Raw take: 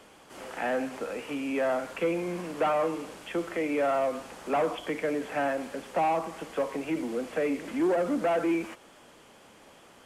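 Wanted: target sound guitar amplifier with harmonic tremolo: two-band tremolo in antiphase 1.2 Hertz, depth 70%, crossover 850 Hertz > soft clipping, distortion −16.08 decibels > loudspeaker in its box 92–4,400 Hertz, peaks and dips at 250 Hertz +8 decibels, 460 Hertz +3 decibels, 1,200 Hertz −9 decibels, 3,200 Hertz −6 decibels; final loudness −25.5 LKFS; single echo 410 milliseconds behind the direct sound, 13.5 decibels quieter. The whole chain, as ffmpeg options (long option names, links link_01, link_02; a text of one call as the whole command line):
ffmpeg -i in.wav -filter_complex "[0:a]aecho=1:1:410:0.211,acrossover=split=850[link_01][link_02];[link_01]aeval=exprs='val(0)*(1-0.7/2+0.7/2*cos(2*PI*1.2*n/s))':channel_layout=same[link_03];[link_02]aeval=exprs='val(0)*(1-0.7/2-0.7/2*cos(2*PI*1.2*n/s))':channel_layout=same[link_04];[link_03][link_04]amix=inputs=2:normalize=0,asoftclip=threshold=-25.5dB,highpass=92,equalizer=frequency=250:width_type=q:width=4:gain=8,equalizer=frequency=460:width_type=q:width=4:gain=3,equalizer=frequency=1200:width_type=q:width=4:gain=-9,equalizer=frequency=3200:width_type=q:width=4:gain=-6,lowpass=frequency=4400:width=0.5412,lowpass=frequency=4400:width=1.3066,volume=8dB" out.wav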